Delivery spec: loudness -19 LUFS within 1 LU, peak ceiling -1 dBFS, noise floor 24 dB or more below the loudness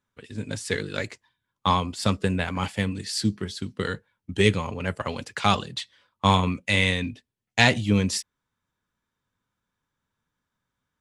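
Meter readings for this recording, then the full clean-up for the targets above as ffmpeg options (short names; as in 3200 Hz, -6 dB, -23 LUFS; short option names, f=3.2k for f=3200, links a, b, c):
loudness -25.5 LUFS; peak -4.0 dBFS; loudness target -19.0 LUFS
-> -af "volume=6.5dB,alimiter=limit=-1dB:level=0:latency=1"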